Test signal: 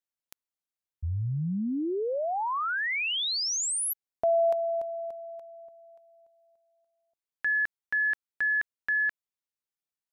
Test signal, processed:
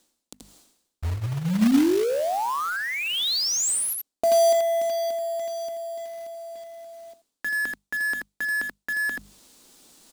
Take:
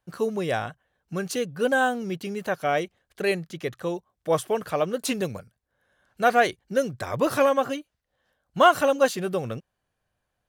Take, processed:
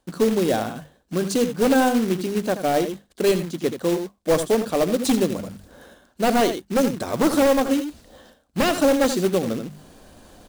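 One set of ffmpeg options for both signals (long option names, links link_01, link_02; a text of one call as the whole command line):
ffmpeg -i in.wav -af "equalizer=frequency=125:width_type=o:width=1:gain=-9,equalizer=frequency=250:width_type=o:width=1:gain=10,equalizer=frequency=2000:width_type=o:width=1:gain=-4,equalizer=frequency=4000:width_type=o:width=1:gain=7,equalizer=frequency=8000:width_type=o:width=1:gain=9,aeval=exprs='0.178*(abs(mod(val(0)/0.178+3,4)-2)-1)':channel_layout=same,tiltshelf=frequency=1200:gain=5,bandreject=frequency=50:width_type=h:width=6,bandreject=frequency=100:width_type=h:width=6,bandreject=frequency=150:width_type=h:width=6,bandreject=frequency=200:width_type=h:width=6,bandreject=frequency=250:width_type=h:width=6,aecho=1:1:76|82:0.106|0.282,areverse,acompressor=mode=upward:threshold=-21dB:ratio=2.5:attack=0.24:release=261:knee=2.83:detection=peak,areverse,acrusher=bits=3:mode=log:mix=0:aa=0.000001" out.wav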